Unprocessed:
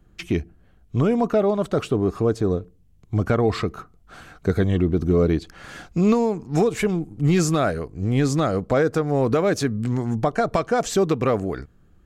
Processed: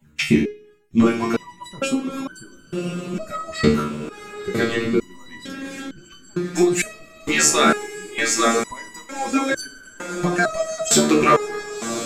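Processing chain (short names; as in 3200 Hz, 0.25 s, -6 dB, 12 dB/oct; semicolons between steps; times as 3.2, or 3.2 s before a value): median-filter separation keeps percussive; 2.49–3.17 high shelf 8300 Hz +12 dB; diffused feedback echo 1.066 s, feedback 50%, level -9 dB; reverb RT60 0.50 s, pre-delay 3 ms, DRR 4.5 dB; maximiser +14 dB; stepped resonator 2.2 Hz 75–1500 Hz; gain +6 dB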